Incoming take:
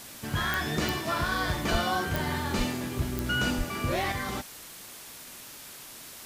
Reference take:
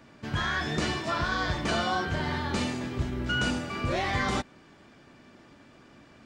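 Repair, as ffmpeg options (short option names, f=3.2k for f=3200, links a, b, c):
-filter_complex "[0:a]adeclick=t=4,asplit=3[a][b][c];[a]afade=t=out:st=1.71:d=0.02[d];[b]highpass=f=140:w=0.5412,highpass=f=140:w=1.3066,afade=t=in:st=1.71:d=0.02,afade=t=out:st=1.83:d=0.02[e];[c]afade=t=in:st=1.83:d=0.02[f];[d][e][f]amix=inputs=3:normalize=0,asplit=3[g][h][i];[g]afade=t=out:st=2.57:d=0.02[j];[h]highpass=f=140:w=0.5412,highpass=f=140:w=1.3066,afade=t=in:st=2.57:d=0.02,afade=t=out:st=2.69:d=0.02[k];[i]afade=t=in:st=2.69:d=0.02[l];[j][k][l]amix=inputs=3:normalize=0,asplit=3[m][n][o];[m]afade=t=out:st=3.57:d=0.02[p];[n]highpass=f=140:w=0.5412,highpass=f=140:w=1.3066,afade=t=in:st=3.57:d=0.02,afade=t=out:st=3.69:d=0.02[q];[o]afade=t=in:st=3.69:d=0.02[r];[p][q][r]amix=inputs=3:normalize=0,afwtdn=0.0063,asetnsamples=n=441:p=0,asendcmd='4.12 volume volume 5.5dB',volume=0dB"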